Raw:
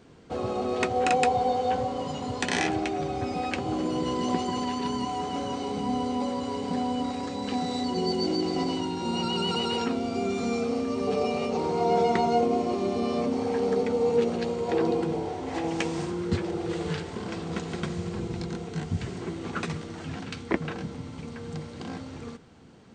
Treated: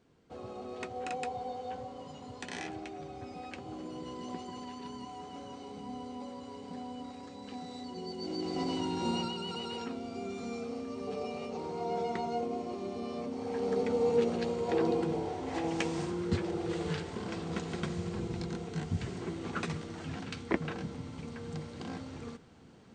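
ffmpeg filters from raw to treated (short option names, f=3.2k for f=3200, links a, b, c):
-af "volume=5dB,afade=t=in:st=8.16:d=0.9:silence=0.251189,afade=t=out:st=9.06:d=0.3:silence=0.354813,afade=t=in:st=13.35:d=0.58:silence=0.446684"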